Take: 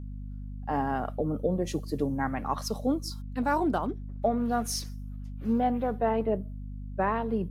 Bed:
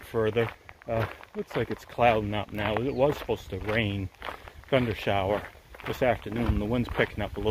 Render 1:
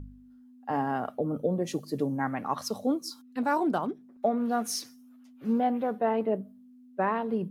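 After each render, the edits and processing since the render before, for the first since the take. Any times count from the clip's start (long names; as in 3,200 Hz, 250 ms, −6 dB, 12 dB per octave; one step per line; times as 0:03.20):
hum removal 50 Hz, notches 4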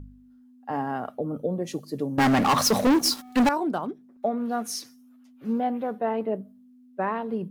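0:02.18–0:03.49: leveller curve on the samples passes 5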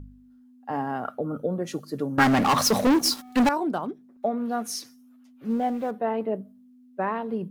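0:01.05–0:02.24: parametric band 1,400 Hz +13 dB 0.47 octaves
0:05.50–0:05.91: converter with a step at zero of −43.5 dBFS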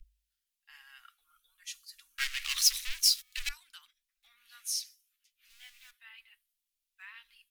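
inverse Chebyshev band-stop filter 110–630 Hz, stop band 70 dB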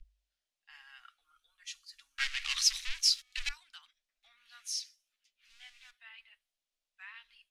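low-pass filter 6,300 Hz 12 dB per octave
parametric band 630 Hz +10 dB 0.57 octaves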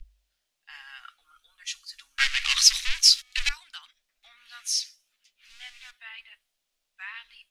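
level +10 dB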